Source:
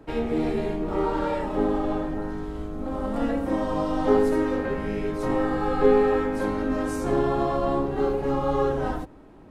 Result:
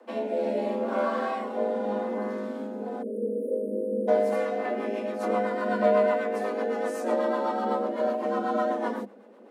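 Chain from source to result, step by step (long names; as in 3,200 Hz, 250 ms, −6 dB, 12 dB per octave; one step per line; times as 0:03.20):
time-frequency box erased 0:03.02–0:04.08, 450–8,500 Hz
rotating-speaker cabinet horn 0.75 Hz, later 8 Hz, at 0:04.07
frequency shifter +200 Hz
level −1 dB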